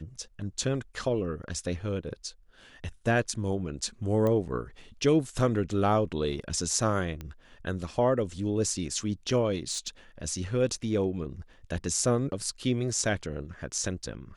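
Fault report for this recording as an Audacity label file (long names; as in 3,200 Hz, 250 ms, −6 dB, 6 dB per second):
4.270000	4.270000	click −18 dBFS
7.210000	7.210000	click −24 dBFS
9.710000	9.880000	clipping −26.5 dBFS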